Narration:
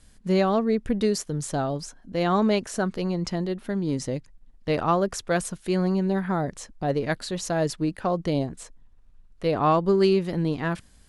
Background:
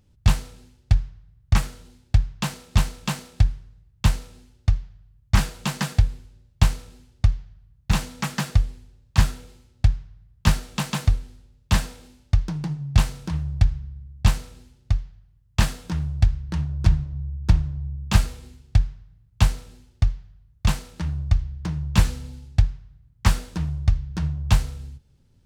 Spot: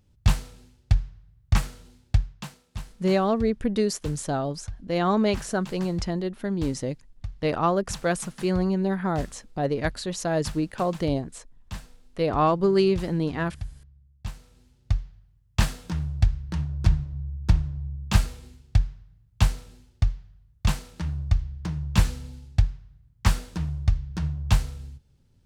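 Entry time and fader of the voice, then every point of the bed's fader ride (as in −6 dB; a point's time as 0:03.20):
2.75 s, −0.5 dB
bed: 0:02.13 −2.5 dB
0:02.63 −17 dB
0:14.32 −17 dB
0:14.88 −2.5 dB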